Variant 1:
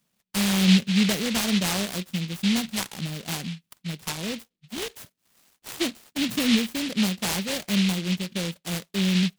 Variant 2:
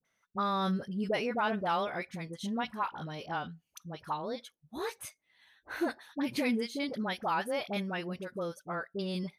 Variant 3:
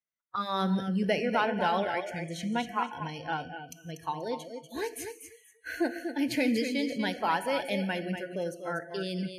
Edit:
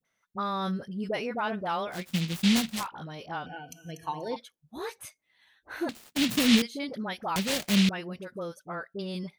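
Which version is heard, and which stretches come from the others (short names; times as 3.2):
2
2.02–2.78 from 1, crossfade 0.24 s
3.46–4.36 from 3
5.89–6.62 from 1
7.36–7.89 from 1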